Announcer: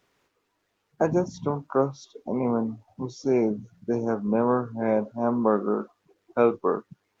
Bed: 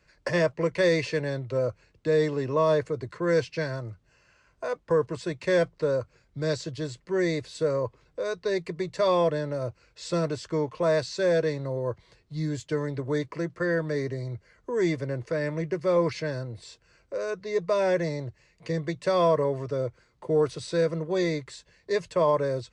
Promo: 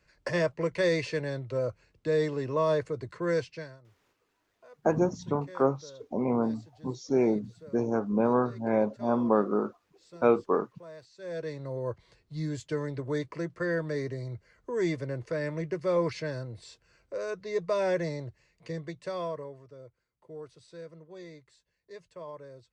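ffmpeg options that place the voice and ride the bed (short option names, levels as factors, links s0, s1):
-filter_complex "[0:a]adelay=3850,volume=0.794[s0];[1:a]volume=6.31,afade=t=out:st=3.28:d=0.51:silence=0.105925,afade=t=in:st=11.17:d=0.67:silence=0.105925,afade=t=out:st=18.08:d=1.55:silence=0.149624[s1];[s0][s1]amix=inputs=2:normalize=0"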